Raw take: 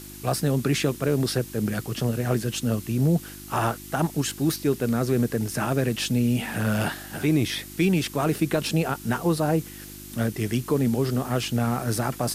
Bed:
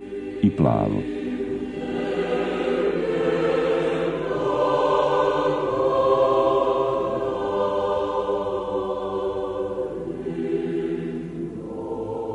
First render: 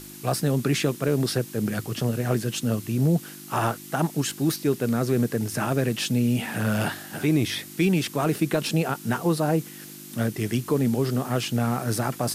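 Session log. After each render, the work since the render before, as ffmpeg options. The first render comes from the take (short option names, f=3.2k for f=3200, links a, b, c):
-af "bandreject=f=50:t=h:w=4,bandreject=f=100:t=h:w=4"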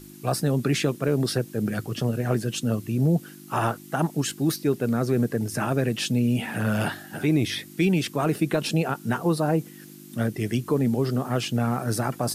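-af "afftdn=nr=8:nf=-42"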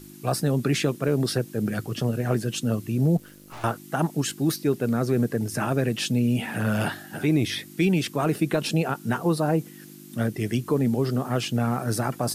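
-filter_complex "[0:a]asettb=1/sr,asplit=3[a][b][c];[a]atrim=end=3.174[d];[b]atrim=start=3.17:end=3.64,asetpts=PTS-STARTPTS,afade=t=in:d=0.004:c=qsin,afade=t=out:st=0.466:d=0.004:c=qsin,aeval=exprs='(tanh(89.1*val(0)+0.75)-tanh(0.75))/89.1':c=same[e];[c]atrim=start=3.636[f];[d][e]acrossfade=d=0.004:c1=hsin:c2=qsin[g];[g][f]acrossfade=d=0.004:c1=qsin:c2=hsin"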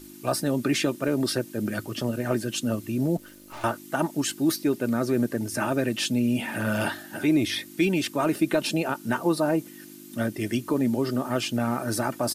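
-af "lowshelf=f=200:g=-4.5,aecho=1:1:3.3:0.47"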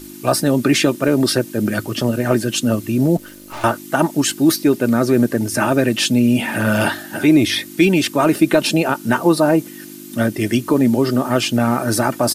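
-af "volume=9.5dB"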